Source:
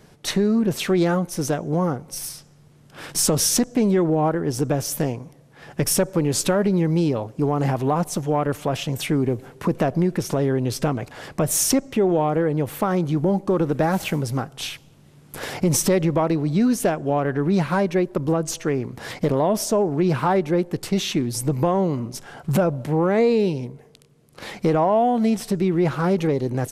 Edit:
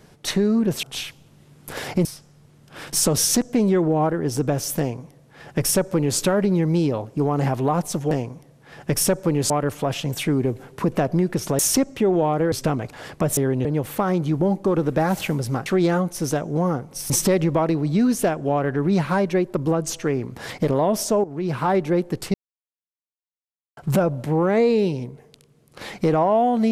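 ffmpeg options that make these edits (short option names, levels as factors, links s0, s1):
-filter_complex "[0:a]asplit=14[s0][s1][s2][s3][s4][s5][s6][s7][s8][s9][s10][s11][s12][s13];[s0]atrim=end=0.832[s14];[s1]atrim=start=14.488:end=15.712[s15];[s2]atrim=start=2.268:end=8.332[s16];[s3]atrim=start=5.008:end=6.402[s17];[s4]atrim=start=8.328:end=10.422[s18];[s5]atrim=start=11.548:end=12.482[s19];[s6]atrim=start=10.698:end=11.552[s20];[s7]atrim=start=10.418:end=10.702[s21];[s8]atrim=start=12.478:end=14.492[s22];[s9]atrim=start=0.828:end=2.272[s23];[s10]atrim=start=15.708:end=19.85,asetpts=PTS-STARTPTS,afade=t=out:st=4.138:d=0.004:c=hsin:silence=0.199526[s24];[s11]atrim=start=19.85:end=20.95,asetpts=PTS-STARTPTS,afade=t=in:d=0.51:silence=0.199526,afade=t=out:st=1.096:d=0.004:c=hsin[s25];[s12]atrim=start=20.95:end=22.38,asetpts=PTS-STARTPTS,volume=0[s26];[s13]atrim=start=22.38,asetpts=PTS-STARTPTS,afade=t=in:d=0.004:c=hsin[s27];[s14][s15]acrossfade=d=0.004:c1=hsin:c2=hsin[s28];[s28][s16]acrossfade=d=0.004:c1=hsin:c2=hsin[s29];[s29][s17]acrossfade=d=0.004:c1=hsin:c2=hsin[s30];[s30][s18]acrossfade=d=0.004:c1=hsin:c2=hsin[s31];[s31][s19]acrossfade=d=0.004:c1=hsin:c2=hsin[s32];[s32][s20]acrossfade=d=0.004:c1=hsin:c2=hsin[s33];[s33][s21]acrossfade=d=0.004:c1=hsin:c2=hsin[s34];[s34][s22]acrossfade=d=0.004:c1=hsin:c2=hsin[s35];[s35][s23]acrossfade=d=0.004:c1=hsin:c2=hsin[s36];[s24][s25][s26][s27]concat=n=4:v=0:a=1[s37];[s36][s37]acrossfade=d=0.004:c1=hsin:c2=hsin"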